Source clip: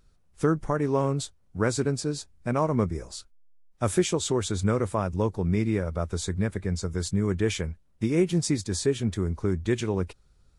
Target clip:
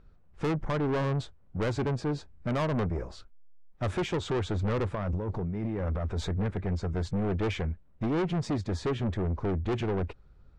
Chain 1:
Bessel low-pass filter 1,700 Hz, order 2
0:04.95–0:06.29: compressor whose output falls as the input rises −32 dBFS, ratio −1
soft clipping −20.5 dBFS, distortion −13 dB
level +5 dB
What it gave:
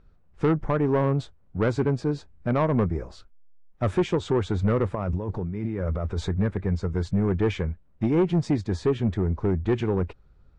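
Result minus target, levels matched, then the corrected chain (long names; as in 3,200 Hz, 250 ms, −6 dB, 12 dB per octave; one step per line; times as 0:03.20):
soft clipping: distortion −8 dB
Bessel low-pass filter 1,700 Hz, order 2
0:04.95–0:06.29: compressor whose output falls as the input rises −32 dBFS, ratio −1
soft clipping −30.5 dBFS, distortion −5 dB
level +5 dB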